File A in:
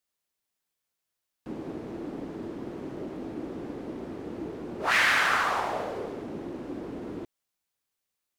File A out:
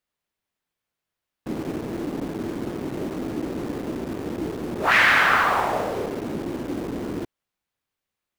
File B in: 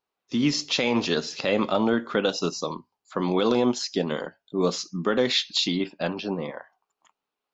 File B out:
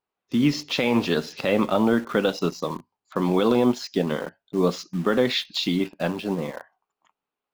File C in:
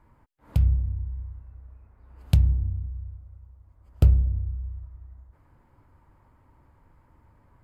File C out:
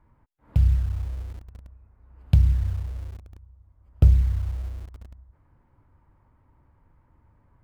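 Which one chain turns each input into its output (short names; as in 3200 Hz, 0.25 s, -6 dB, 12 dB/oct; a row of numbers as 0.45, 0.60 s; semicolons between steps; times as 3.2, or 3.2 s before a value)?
tone controls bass +3 dB, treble -9 dB; in parallel at -8 dB: bit-crush 6-bit; on the sum: match loudness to -24 LUFS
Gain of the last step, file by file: +3.5, -1.5, -4.0 dB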